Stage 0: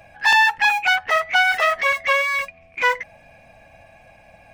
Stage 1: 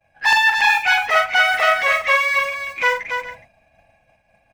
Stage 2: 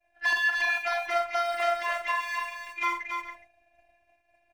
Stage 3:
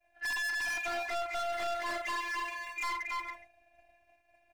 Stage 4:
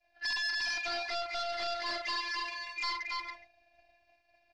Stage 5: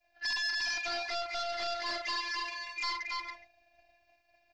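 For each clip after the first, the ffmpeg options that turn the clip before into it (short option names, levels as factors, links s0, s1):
-af "aecho=1:1:44|87|280|417:0.531|0.133|0.501|0.141,agate=range=0.0224:threshold=0.0141:ratio=3:detection=peak"
-filter_complex "[0:a]acrossover=split=820|1600[s0][s1][s2];[s2]alimiter=limit=0.178:level=0:latency=1:release=223[s3];[s0][s1][s3]amix=inputs=3:normalize=0,afftfilt=real='hypot(re,im)*cos(PI*b)':imag='0':win_size=512:overlap=0.75,volume=0.562"
-af "volume=42.2,asoftclip=hard,volume=0.0237"
-af "lowpass=f=4700:t=q:w=6.1,volume=0.75"
-af "aexciter=amount=1:drive=4:freq=5800"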